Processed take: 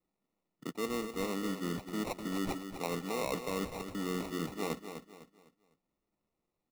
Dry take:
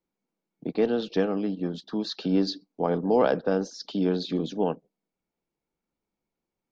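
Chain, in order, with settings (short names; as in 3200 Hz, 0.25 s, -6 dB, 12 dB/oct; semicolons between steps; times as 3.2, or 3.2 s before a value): reverse; compressor 6:1, threshold -33 dBFS, peak gain reduction 15 dB; reverse; sample-rate reducer 1600 Hz, jitter 0%; feedback echo 0.252 s, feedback 34%, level -9 dB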